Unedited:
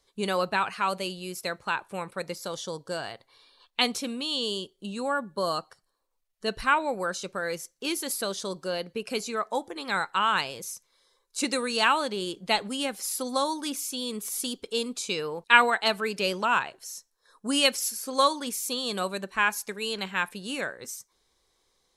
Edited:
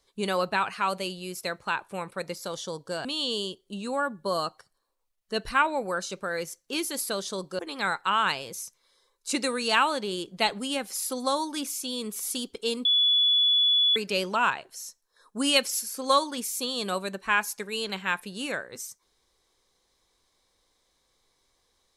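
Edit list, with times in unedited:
3.05–4.17 s: delete
8.71–9.68 s: delete
14.94–16.05 s: bleep 3.42 kHz -18.5 dBFS

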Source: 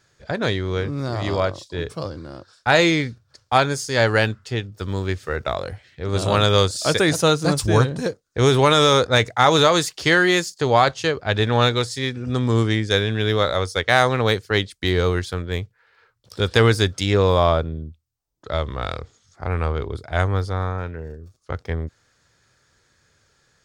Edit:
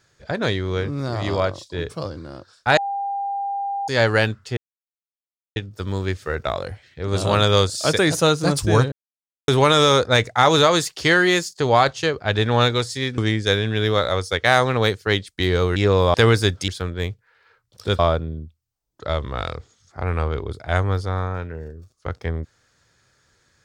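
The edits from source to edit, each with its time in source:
2.77–3.88 s: bleep 798 Hz -22.5 dBFS
4.57 s: insert silence 0.99 s
7.93–8.49 s: mute
12.19–12.62 s: delete
15.20–16.51 s: swap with 17.05–17.43 s

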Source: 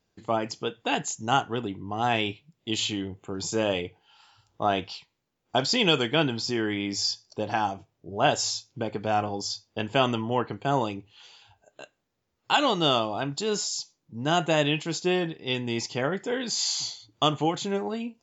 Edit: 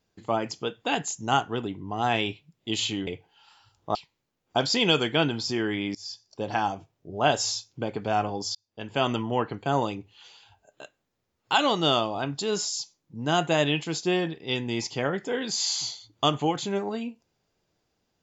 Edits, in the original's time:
3.07–3.79 s: delete
4.67–4.94 s: delete
6.94–7.50 s: fade in, from -23 dB
9.54–10.15 s: fade in

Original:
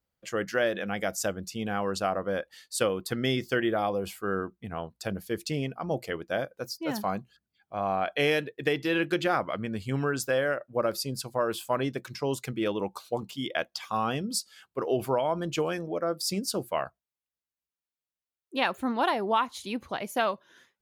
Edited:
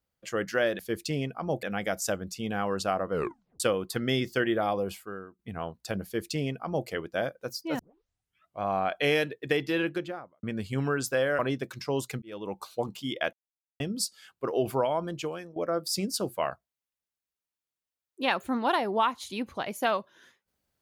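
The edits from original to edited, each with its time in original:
2.27 s: tape stop 0.49 s
4.03–4.55 s: fade out quadratic, to -17 dB
5.20–6.04 s: copy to 0.79 s
6.95 s: tape start 0.81 s
8.80–9.59 s: studio fade out
10.55–11.73 s: delete
12.56–13.00 s: fade in
13.67–14.14 s: mute
15.20–15.90 s: fade out, to -14.5 dB

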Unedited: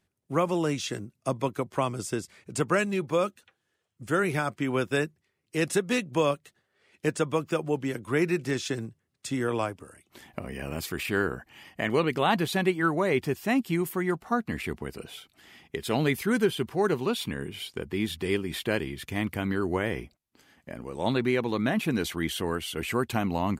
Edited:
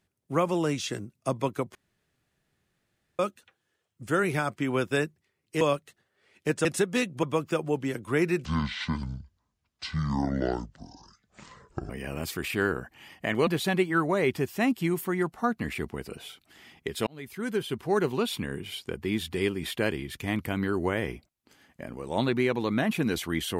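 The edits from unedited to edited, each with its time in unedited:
1.75–3.19 s: room tone
5.61–6.19 s: move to 7.23 s
8.45–10.45 s: speed 58%
12.02–12.35 s: delete
15.95–16.83 s: fade in

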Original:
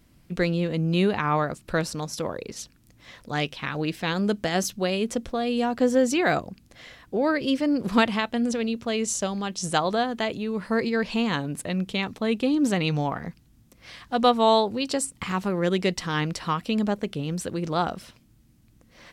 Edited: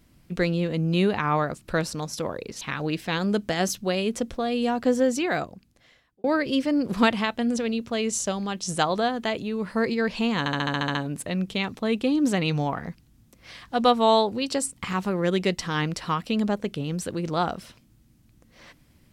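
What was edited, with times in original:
2.61–3.56 s: delete
5.80–7.19 s: fade out
11.34 s: stutter 0.07 s, 9 plays

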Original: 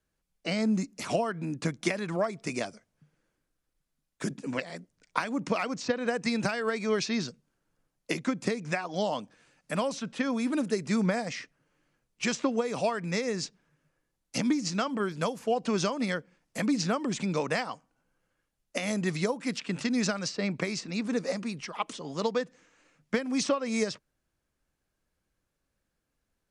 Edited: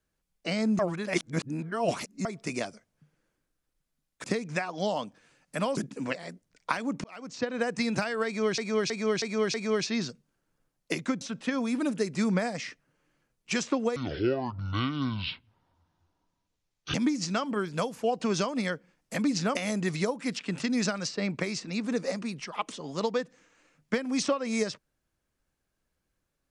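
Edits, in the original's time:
0.79–2.25 s: reverse
5.51–6.03 s: fade in
6.73–7.05 s: loop, 5 plays
8.40–9.93 s: move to 4.24 s
12.68–14.38 s: speed 57%
16.99–18.76 s: delete

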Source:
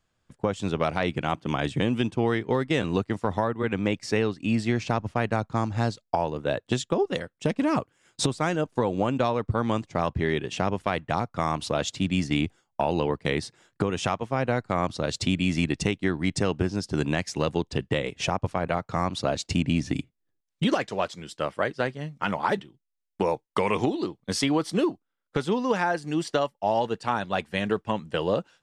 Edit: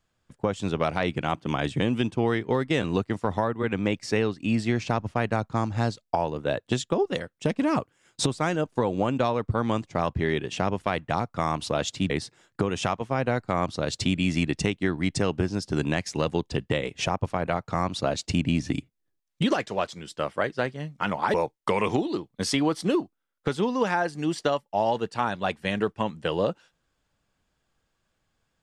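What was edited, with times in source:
12.10–13.31 s: delete
22.55–23.23 s: delete

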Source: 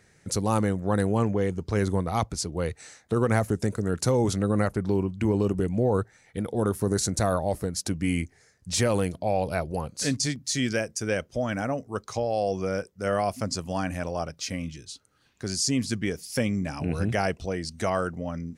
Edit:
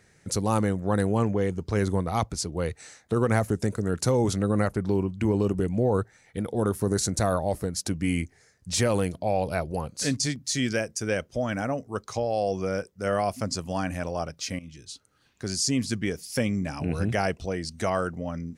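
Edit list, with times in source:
14.59–14.91 s: fade in, from -16 dB

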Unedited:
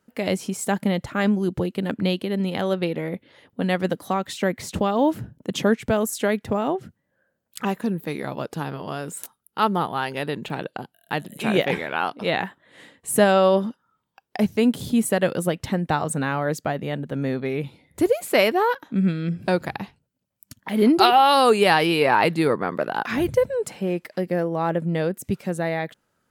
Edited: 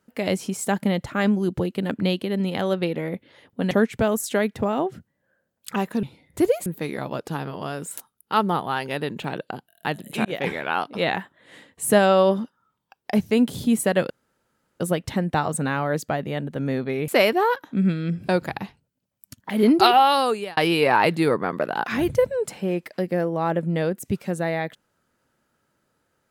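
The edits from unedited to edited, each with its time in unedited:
3.71–5.60 s: delete
11.51–11.86 s: fade in equal-power
15.36 s: insert room tone 0.70 s
17.64–18.27 s: move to 7.92 s
21.18–21.76 s: fade out

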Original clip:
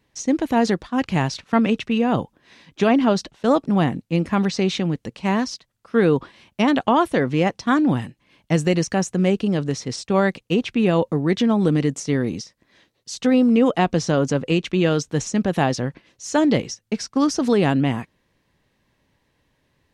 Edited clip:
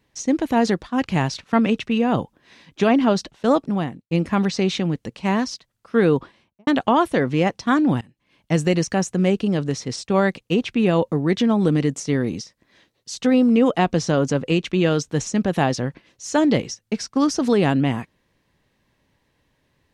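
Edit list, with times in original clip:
3.55–4.11 s: fade out
6.12–6.67 s: studio fade out
8.01–8.58 s: fade in linear, from -21.5 dB

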